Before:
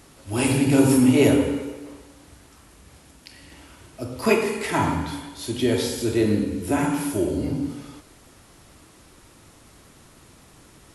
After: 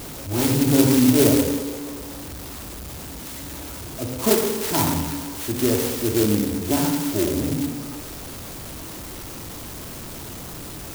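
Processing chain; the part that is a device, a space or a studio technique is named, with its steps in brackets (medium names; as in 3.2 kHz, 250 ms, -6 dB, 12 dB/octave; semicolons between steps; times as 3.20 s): early CD player with a faulty converter (jump at every zero crossing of -30 dBFS; sampling jitter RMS 0.15 ms)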